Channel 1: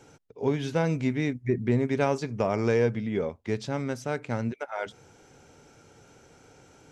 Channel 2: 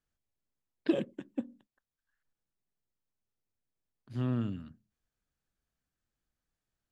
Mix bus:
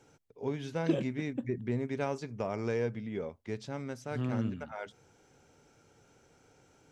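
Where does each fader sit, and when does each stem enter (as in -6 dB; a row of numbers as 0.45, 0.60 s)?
-8.5, -1.5 dB; 0.00, 0.00 s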